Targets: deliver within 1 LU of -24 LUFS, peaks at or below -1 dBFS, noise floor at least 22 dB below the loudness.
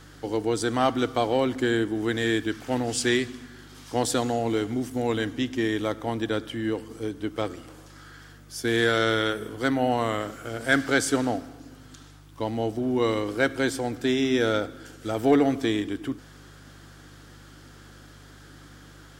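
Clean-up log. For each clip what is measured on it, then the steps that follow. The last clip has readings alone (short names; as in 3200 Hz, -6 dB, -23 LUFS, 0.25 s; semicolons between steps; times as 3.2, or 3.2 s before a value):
hum 50 Hz; harmonics up to 150 Hz; hum level -49 dBFS; loudness -26.0 LUFS; peak -8.5 dBFS; loudness target -24.0 LUFS
-> de-hum 50 Hz, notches 3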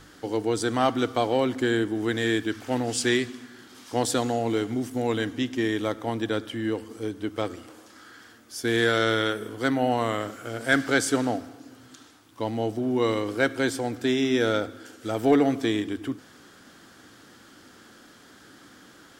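hum none; loudness -26.0 LUFS; peak -8.5 dBFS; loudness target -24.0 LUFS
-> gain +2 dB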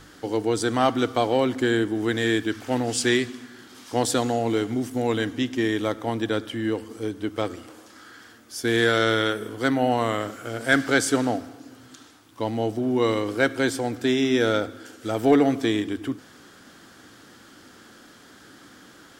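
loudness -24.0 LUFS; peak -6.5 dBFS; noise floor -50 dBFS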